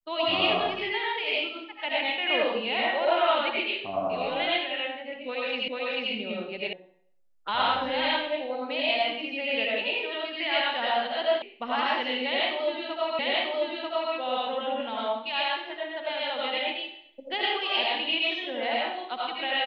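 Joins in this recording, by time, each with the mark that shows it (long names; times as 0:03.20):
0:05.68: the same again, the last 0.44 s
0:06.73: cut off before it has died away
0:11.42: cut off before it has died away
0:13.19: the same again, the last 0.94 s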